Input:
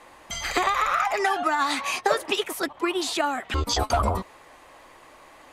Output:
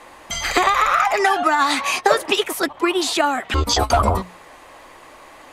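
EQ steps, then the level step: notches 60/120/180 Hz; +6.5 dB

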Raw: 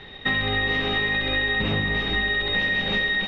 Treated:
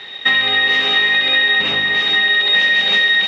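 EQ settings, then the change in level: HPF 200 Hz 6 dB/oct; tilt +3.5 dB/oct; +6.0 dB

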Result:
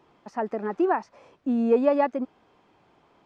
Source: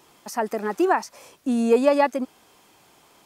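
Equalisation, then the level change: tape spacing loss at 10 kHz 33 dB; -1.0 dB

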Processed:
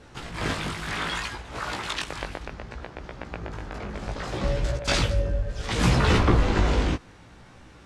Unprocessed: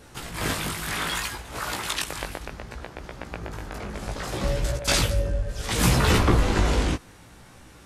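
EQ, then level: air absorption 85 m; 0.0 dB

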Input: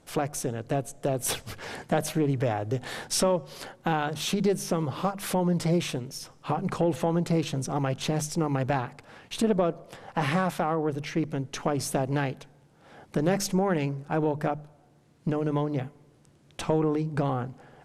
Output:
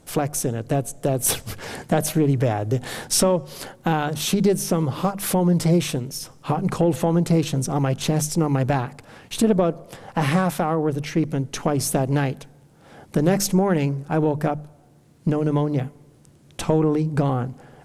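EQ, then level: low shelf 440 Hz +5.5 dB; high shelf 7700 Hz +11 dB; +2.5 dB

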